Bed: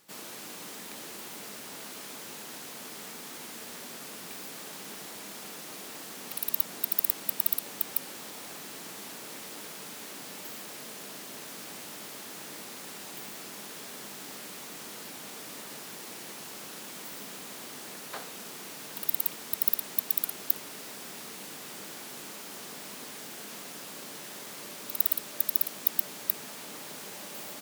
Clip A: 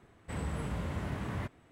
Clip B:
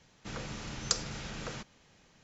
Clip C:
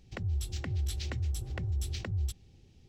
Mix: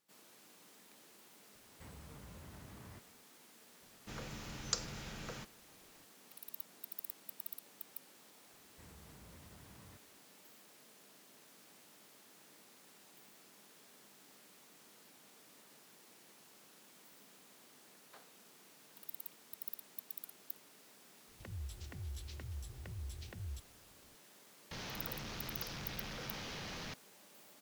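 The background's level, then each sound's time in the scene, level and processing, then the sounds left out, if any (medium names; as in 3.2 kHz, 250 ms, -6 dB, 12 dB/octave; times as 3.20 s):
bed -19 dB
1.52 s: add A -12 dB + compression, threshold -38 dBFS
3.82 s: add B -6 dB
8.50 s: add A -16 dB + compression, threshold -39 dBFS
21.28 s: add C -12.5 dB
24.71 s: add B -15 dB + one-bit delta coder 32 kbps, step -24 dBFS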